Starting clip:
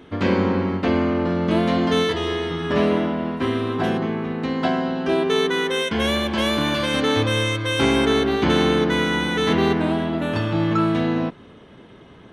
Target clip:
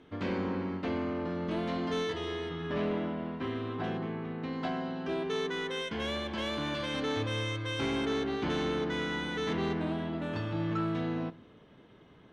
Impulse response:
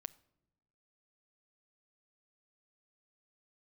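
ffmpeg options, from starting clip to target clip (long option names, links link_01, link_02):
-filter_complex "[0:a]asetnsamples=nb_out_samples=441:pad=0,asendcmd='2.49 lowpass f 4500;4.53 lowpass f 7200',lowpass=8100,asoftclip=type=tanh:threshold=-12.5dB[link_01];[1:a]atrim=start_sample=2205[link_02];[link_01][link_02]afir=irnorm=-1:irlink=0,volume=-7.5dB"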